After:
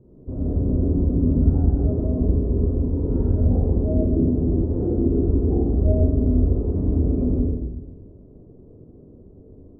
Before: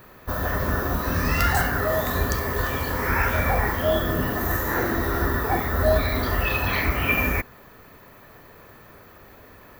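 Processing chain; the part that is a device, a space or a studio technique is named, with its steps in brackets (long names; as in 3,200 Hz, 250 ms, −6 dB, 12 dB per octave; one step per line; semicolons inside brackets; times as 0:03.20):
next room (low-pass filter 410 Hz 24 dB per octave; convolution reverb RT60 1.1 s, pre-delay 25 ms, DRR −4.5 dB)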